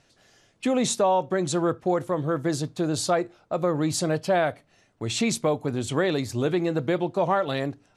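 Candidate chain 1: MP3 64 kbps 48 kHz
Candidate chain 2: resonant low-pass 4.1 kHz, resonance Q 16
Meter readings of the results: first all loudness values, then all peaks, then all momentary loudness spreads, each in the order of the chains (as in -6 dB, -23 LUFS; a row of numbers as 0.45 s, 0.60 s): -26.0 LUFS, -21.0 LUFS; -11.0 dBFS, -1.5 dBFS; 5 LU, 10 LU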